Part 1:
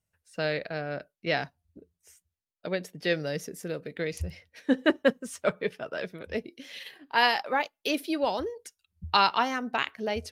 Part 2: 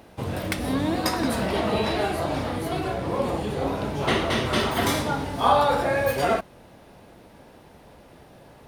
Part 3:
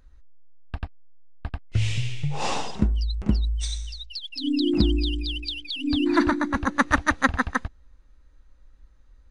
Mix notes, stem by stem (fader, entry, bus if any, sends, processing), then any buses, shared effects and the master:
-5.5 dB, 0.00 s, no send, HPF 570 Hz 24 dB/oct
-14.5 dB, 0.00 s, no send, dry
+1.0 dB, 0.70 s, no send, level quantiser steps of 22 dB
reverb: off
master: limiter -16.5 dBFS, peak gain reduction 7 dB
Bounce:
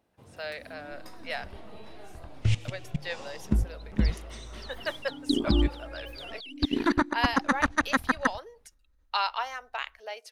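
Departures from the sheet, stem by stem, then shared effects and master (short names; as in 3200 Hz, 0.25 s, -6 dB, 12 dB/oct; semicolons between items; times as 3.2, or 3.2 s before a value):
stem 2 -14.5 dB -> -24.0 dB; master: missing limiter -16.5 dBFS, peak gain reduction 7 dB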